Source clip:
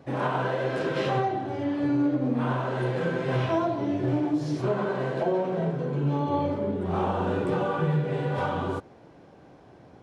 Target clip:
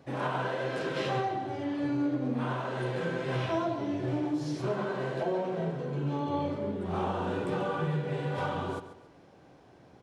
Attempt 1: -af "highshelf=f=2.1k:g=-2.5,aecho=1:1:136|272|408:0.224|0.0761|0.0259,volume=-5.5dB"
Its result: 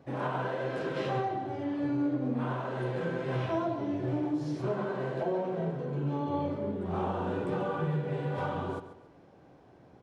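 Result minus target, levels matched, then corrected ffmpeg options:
4000 Hz band -5.0 dB
-af "highshelf=f=2.1k:g=5.5,aecho=1:1:136|272|408:0.224|0.0761|0.0259,volume=-5.5dB"

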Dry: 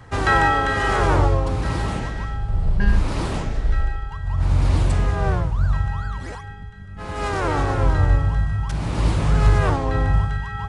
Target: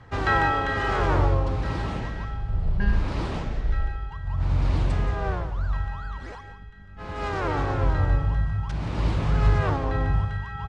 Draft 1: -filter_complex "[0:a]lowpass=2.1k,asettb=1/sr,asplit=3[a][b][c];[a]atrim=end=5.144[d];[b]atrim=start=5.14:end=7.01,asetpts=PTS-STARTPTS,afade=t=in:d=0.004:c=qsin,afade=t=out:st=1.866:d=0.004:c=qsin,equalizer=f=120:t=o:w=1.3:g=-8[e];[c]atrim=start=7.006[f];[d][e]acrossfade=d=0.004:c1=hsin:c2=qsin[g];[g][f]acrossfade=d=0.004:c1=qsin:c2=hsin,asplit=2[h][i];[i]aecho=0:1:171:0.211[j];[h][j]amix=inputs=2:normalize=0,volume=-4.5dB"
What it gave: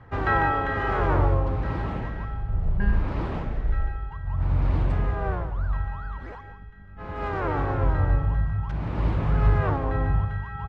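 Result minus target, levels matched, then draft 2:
4000 Hz band -8.0 dB
-filter_complex "[0:a]lowpass=4.9k,asettb=1/sr,asplit=3[a][b][c];[a]atrim=end=5.144[d];[b]atrim=start=5.14:end=7.01,asetpts=PTS-STARTPTS,afade=t=in:d=0.004:c=qsin,afade=t=out:st=1.866:d=0.004:c=qsin,equalizer=f=120:t=o:w=1.3:g=-8[e];[c]atrim=start=7.006[f];[d][e]acrossfade=d=0.004:c1=hsin:c2=qsin[g];[g][f]acrossfade=d=0.004:c1=qsin:c2=hsin,asplit=2[h][i];[i]aecho=0:1:171:0.211[j];[h][j]amix=inputs=2:normalize=0,volume=-4.5dB"

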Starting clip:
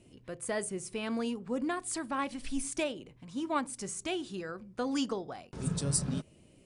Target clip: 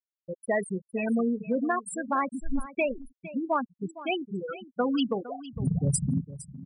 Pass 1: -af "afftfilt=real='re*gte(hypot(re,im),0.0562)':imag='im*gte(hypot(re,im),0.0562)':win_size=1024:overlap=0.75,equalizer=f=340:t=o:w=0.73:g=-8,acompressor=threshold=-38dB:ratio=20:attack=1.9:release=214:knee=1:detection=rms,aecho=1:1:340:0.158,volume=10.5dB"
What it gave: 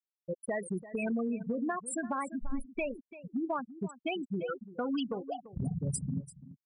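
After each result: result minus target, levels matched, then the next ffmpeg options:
compressor: peak gain reduction +8 dB; echo 0.119 s early
-af "afftfilt=real='re*gte(hypot(re,im),0.0562)':imag='im*gte(hypot(re,im),0.0562)':win_size=1024:overlap=0.75,equalizer=f=340:t=o:w=0.73:g=-8,acompressor=threshold=-29.5dB:ratio=20:attack=1.9:release=214:knee=1:detection=rms,aecho=1:1:340:0.158,volume=10.5dB"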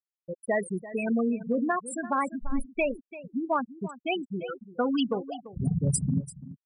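echo 0.119 s early
-af "afftfilt=real='re*gte(hypot(re,im),0.0562)':imag='im*gte(hypot(re,im),0.0562)':win_size=1024:overlap=0.75,equalizer=f=340:t=o:w=0.73:g=-8,acompressor=threshold=-29.5dB:ratio=20:attack=1.9:release=214:knee=1:detection=rms,aecho=1:1:459:0.158,volume=10.5dB"

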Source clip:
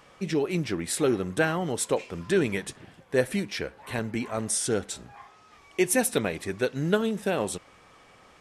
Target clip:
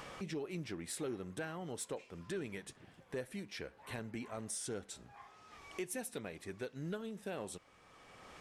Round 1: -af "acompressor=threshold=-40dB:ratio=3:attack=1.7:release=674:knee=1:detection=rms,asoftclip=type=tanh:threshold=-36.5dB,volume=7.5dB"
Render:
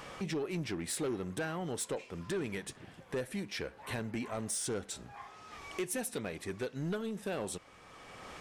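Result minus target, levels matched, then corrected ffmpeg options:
compressor: peak gain reduction -7.5 dB
-af "acompressor=threshold=-51dB:ratio=3:attack=1.7:release=674:knee=1:detection=rms,asoftclip=type=tanh:threshold=-36.5dB,volume=7.5dB"

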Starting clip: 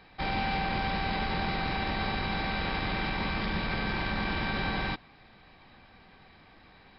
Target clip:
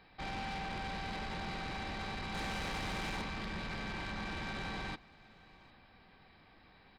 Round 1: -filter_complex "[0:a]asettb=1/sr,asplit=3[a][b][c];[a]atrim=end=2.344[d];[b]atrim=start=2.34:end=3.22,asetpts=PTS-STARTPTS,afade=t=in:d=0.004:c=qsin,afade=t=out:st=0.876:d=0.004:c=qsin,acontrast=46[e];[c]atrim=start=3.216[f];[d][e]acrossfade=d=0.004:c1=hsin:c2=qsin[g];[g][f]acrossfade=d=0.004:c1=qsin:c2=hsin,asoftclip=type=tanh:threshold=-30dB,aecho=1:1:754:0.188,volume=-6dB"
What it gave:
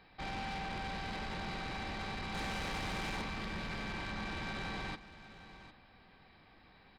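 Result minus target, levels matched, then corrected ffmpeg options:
echo-to-direct +9 dB
-filter_complex "[0:a]asettb=1/sr,asplit=3[a][b][c];[a]atrim=end=2.344[d];[b]atrim=start=2.34:end=3.22,asetpts=PTS-STARTPTS,afade=t=in:d=0.004:c=qsin,afade=t=out:st=0.876:d=0.004:c=qsin,acontrast=46[e];[c]atrim=start=3.216[f];[d][e]acrossfade=d=0.004:c1=hsin:c2=qsin[g];[g][f]acrossfade=d=0.004:c1=qsin:c2=hsin,asoftclip=type=tanh:threshold=-30dB,aecho=1:1:754:0.0668,volume=-6dB"

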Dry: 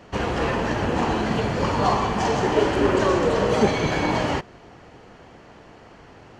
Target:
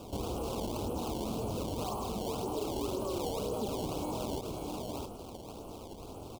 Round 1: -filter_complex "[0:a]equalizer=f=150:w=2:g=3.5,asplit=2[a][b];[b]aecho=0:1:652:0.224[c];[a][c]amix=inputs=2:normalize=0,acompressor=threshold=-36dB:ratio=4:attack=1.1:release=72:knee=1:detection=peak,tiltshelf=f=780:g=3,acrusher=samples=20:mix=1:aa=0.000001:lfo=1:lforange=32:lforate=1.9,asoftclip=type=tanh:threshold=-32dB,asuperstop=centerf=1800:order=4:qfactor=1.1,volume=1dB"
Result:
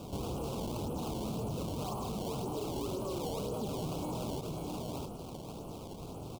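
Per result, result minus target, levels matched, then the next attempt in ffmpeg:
soft clip: distortion +14 dB; 125 Hz band +3.5 dB
-filter_complex "[0:a]equalizer=f=150:w=2:g=3.5,asplit=2[a][b];[b]aecho=0:1:652:0.224[c];[a][c]amix=inputs=2:normalize=0,acompressor=threshold=-36dB:ratio=4:attack=1.1:release=72:knee=1:detection=peak,tiltshelf=f=780:g=3,acrusher=samples=20:mix=1:aa=0.000001:lfo=1:lforange=32:lforate=1.9,asoftclip=type=tanh:threshold=-23.5dB,asuperstop=centerf=1800:order=4:qfactor=1.1,volume=1dB"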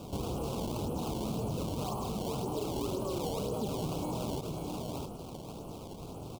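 125 Hz band +3.5 dB
-filter_complex "[0:a]equalizer=f=150:w=2:g=-6.5,asplit=2[a][b];[b]aecho=0:1:652:0.224[c];[a][c]amix=inputs=2:normalize=0,acompressor=threshold=-36dB:ratio=4:attack=1.1:release=72:knee=1:detection=peak,tiltshelf=f=780:g=3,acrusher=samples=20:mix=1:aa=0.000001:lfo=1:lforange=32:lforate=1.9,asoftclip=type=tanh:threshold=-23.5dB,asuperstop=centerf=1800:order=4:qfactor=1.1,volume=1dB"

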